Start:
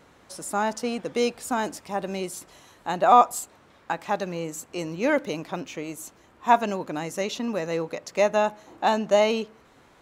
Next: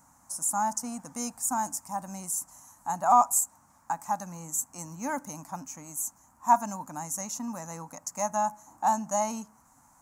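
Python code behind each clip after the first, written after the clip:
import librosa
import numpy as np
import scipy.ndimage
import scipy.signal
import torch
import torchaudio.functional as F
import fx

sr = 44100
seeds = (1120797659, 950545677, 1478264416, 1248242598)

y = fx.curve_eq(x, sr, hz=(270.0, 400.0, 870.0, 3500.0, 6600.0), db=(0, -23, 7, -19, 14))
y = F.gain(torch.from_numpy(y), -6.0).numpy()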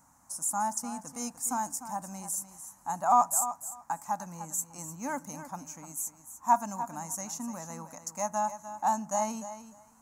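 y = fx.echo_feedback(x, sr, ms=299, feedback_pct=16, wet_db=-12.0)
y = F.gain(torch.from_numpy(y), -2.5).numpy()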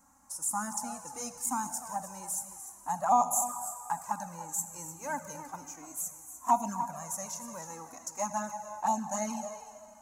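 y = fx.rev_schroeder(x, sr, rt60_s=2.5, comb_ms=31, drr_db=10.0)
y = fx.env_flanger(y, sr, rest_ms=3.8, full_db=-22.5)
y = F.gain(torch.from_numpy(y), 2.0).numpy()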